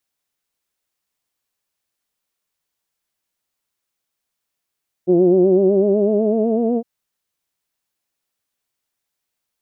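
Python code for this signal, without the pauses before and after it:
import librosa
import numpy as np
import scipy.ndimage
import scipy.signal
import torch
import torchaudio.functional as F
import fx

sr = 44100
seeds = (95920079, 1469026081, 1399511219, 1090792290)

y = fx.formant_vowel(sr, seeds[0], length_s=1.76, hz=174.0, glide_st=5.5, vibrato_hz=8.0, vibrato_st=0.75, f1_hz=360.0, f2_hz=640.0, f3_hz=2800.0)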